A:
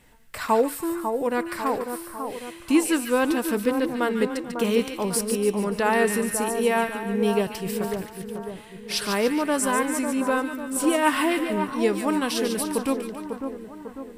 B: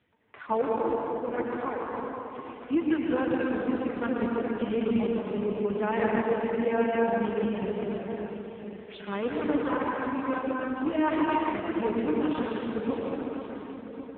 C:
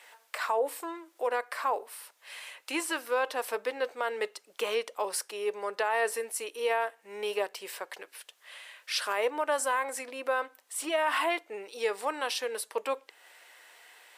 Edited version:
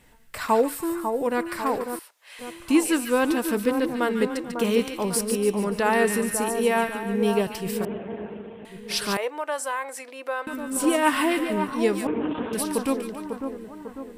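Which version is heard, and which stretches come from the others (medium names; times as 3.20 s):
A
1.99–2.39 s: from C
7.85–8.65 s: from B
9.17–10.47 s: from C
12.07–12.53 s: from B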